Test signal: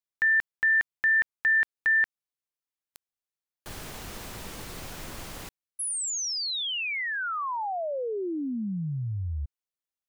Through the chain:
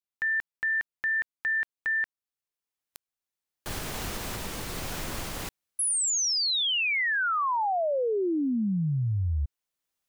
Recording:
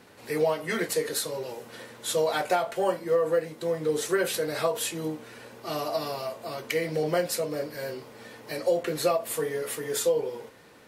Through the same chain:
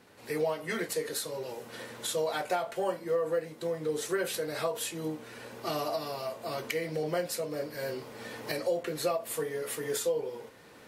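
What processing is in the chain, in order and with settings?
camcorder AGC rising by 9.7 dB per second
level −5.5 dB

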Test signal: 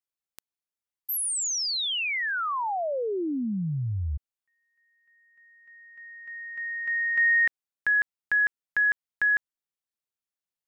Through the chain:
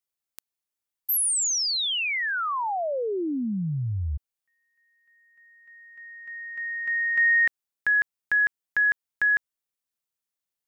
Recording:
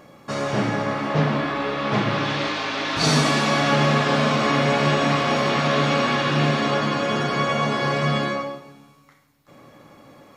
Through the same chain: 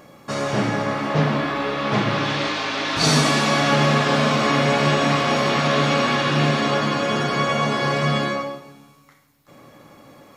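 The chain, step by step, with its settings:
high-shelf EQ 6,800 Hz +5 dB
level +1 dB

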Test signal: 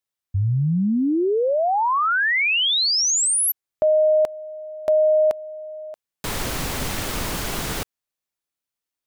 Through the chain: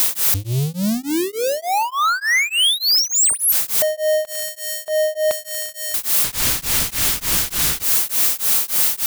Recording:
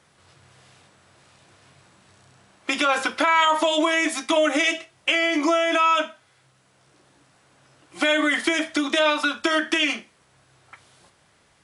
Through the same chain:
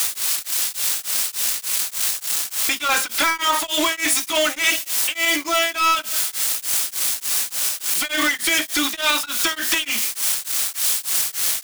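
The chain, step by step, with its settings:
spike at every zero crossing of −17.5 dBFS
guitar amp tone stack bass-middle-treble 5-5-5
leveller curve on the samples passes 5
in parallel at −1 dB: output level in coarse steps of 19 dB
on the sum: brickwall limiter −16 dBFS
low-shelf EQ 140 Hz −3 dB
on a send: bucket-brigade delay 79 ms, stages 1,024, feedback 70%, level −24 dB
on the sum: tremolo along a rectified sine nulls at 3.4 Hz
level +3.5 dB

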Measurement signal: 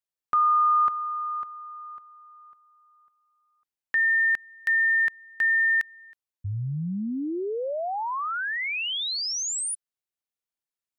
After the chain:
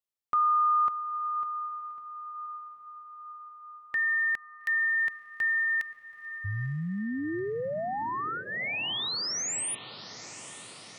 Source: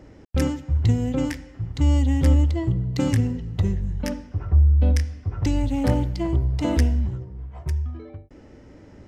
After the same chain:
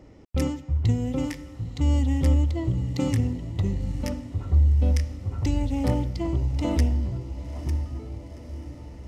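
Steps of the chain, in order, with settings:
notch filter 1,600 Hz, Q 5.1
feedback delay with all-pass diffusion 908 ms, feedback 63%, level −14 dB
level −3 dB

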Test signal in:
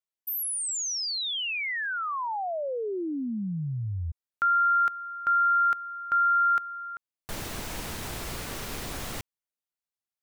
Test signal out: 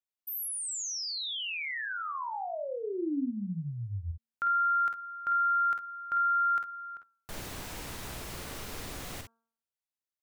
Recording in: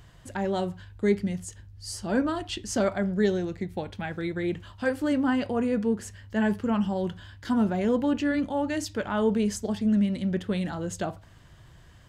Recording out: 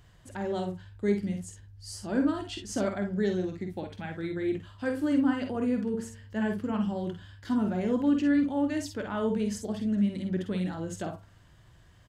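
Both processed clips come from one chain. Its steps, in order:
hum removal 228.4 Hz, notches 7
dynamic equaliser 290 Hz, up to +6 dB, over −42 dBFS, Q 2.5
on a send: ambience of single reflections 49 ms −7 dB, 60 ms −11 dB
on the sum: level −6 dB

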